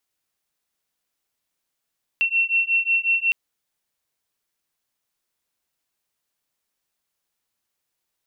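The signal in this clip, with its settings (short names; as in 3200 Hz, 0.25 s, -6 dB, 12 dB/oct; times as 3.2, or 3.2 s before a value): beating tones 2710 Hz, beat 5.5 Hz, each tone -21 dBFS 1.11 s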